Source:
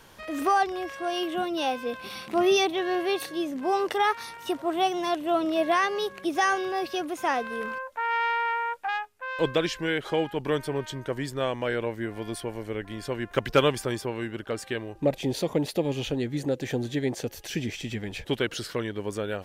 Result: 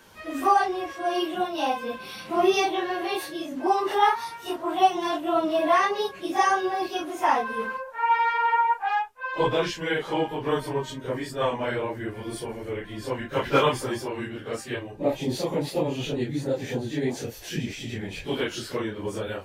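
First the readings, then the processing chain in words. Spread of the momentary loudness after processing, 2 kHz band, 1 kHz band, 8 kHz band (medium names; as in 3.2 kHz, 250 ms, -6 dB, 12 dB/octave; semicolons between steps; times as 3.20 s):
11 LU, +0.5 dB, +4.5 dB, 0.0 dB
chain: phase randomisation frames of 100 ms; dynamic bell 940 Hz, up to +8 dB, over -43 dBFS, Q 2.6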